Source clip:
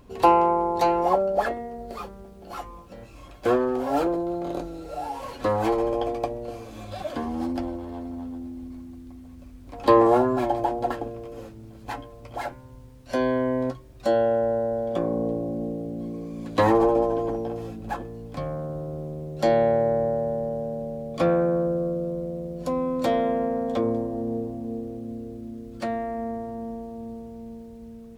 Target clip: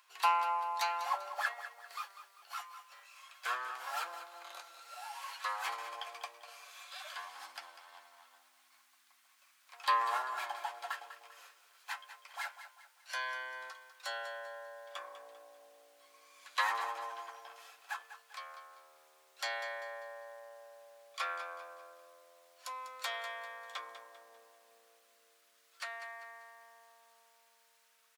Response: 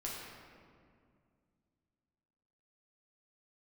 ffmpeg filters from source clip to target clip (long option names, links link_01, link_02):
-af "highpass=frequency=1200:width=0.5412,highpass=frequency=1200:width=1.3066,aecho=1:1:197|394|591|788:0.251|0.098|0.0382|0.0149,volume=-1.5dB"